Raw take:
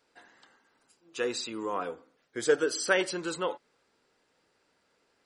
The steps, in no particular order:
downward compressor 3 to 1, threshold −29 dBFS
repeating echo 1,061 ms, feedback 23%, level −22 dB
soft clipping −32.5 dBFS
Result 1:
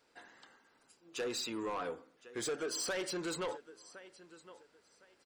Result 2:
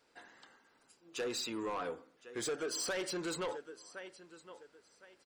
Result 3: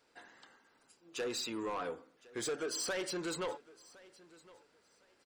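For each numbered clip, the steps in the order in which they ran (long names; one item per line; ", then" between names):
downward compressor, then repeating echo, then soft clipping
repeating echo, then downward compressor, then soft clipping
downward compressor, then soft clipping, then repeating echo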